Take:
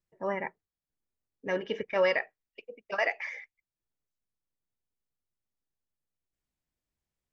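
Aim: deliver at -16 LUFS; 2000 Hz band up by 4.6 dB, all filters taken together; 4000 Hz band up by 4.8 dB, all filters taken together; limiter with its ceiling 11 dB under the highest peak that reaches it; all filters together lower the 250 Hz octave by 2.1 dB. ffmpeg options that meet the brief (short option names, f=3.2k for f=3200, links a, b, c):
-af "equalizer=f=250:t=o:g=-3.5,equalizer=f=2k:t=o:g=4,equalizer=f=4k:t=o:g=5.5,volume=18.5dB,alimiter=limit=-4dB:level=0:latency=1"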